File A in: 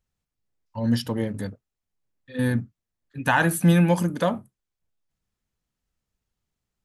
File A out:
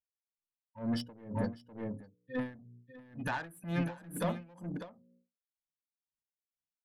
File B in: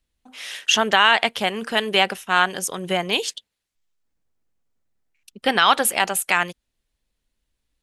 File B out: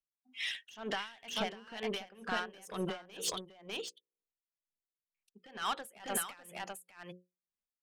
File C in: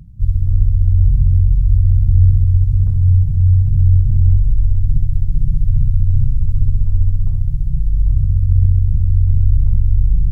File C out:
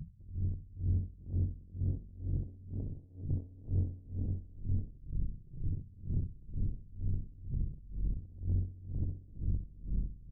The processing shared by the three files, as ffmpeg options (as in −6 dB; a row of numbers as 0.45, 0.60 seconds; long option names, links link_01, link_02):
-filter_complex "[0:a]afftdn=noise_reduction=25:noise_floor=-35,lowshelf=frequency=83:gain=-9,bandreject=frequency=60:width_type=h:width=6,bandreject=frequency=120:width_type=h:width=6,bandreject=frequency=180:width_type=h:width=6,bandreject=frequency=240:width_type=h:width=6,bandreject=frequency=300:width_type=h:width=6,bandreject=frequency=360:width_type=h:width=6,bandreject=frequency=420:width_type=h:width=6,bandreject=frequency=480:width_type=h:width=6,bandreject=frequency=540:width_type=h:width=6,acompressor=threshold=-26dB:ratio=6,alimiter=limit=-20.5dB:level=0:latency=1:release=135,acontrast=67,asoftclip=type=tanh:threshold=-23.5dB,asplit=2[link_01][link_02];[link_02]aecho=0:1:599:0.668[link_03];[link_01][link_03]amix=inputs=2:normalize=0,aeval=exprs='val(0)*pow(10,-23*(0.5-0.5*cos(2*PI*2.1*n/s))/20)':channel_layout=same,volume=-3.5dB"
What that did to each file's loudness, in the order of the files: −15.0, −19.5, −23.5 LU